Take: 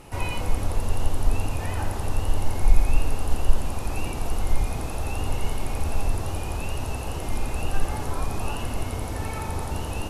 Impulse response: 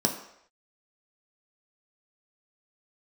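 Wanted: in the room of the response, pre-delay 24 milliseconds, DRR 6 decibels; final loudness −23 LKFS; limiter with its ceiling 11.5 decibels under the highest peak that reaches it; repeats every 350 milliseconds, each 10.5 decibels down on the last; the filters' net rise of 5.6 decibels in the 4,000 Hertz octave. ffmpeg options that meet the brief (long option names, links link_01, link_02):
-filter_complex "[0:a]equalizer=frequency=4000:width_type=o:gain=8,alimiter=limit=-14dB:level=0:latency=1,aecho=1:1:350|700|1050:0.299|0.0896|0.0269,asplit=2[link_01][link_02];[1:a]atrim=start_sample=2205,adelay=24[link_03];[link_02][link_03]afir=irnorm=-1:irlink=0,volume=-16dB[link_04];[link_01][link_04]amix=inputs=2:normalize=0,volume=6dB"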